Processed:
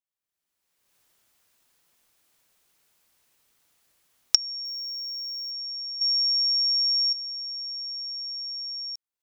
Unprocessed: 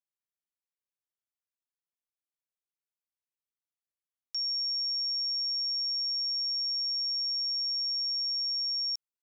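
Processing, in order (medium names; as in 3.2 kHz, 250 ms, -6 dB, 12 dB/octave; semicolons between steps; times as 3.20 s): 4.65–5.51 s: zero-crossing glitches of -45 dBFS; recorder AGC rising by 31 dB/s; 6.01–7.13 s: peaking EQ 5.3 kHz +11 dB 2.7 oct; trim -3 dB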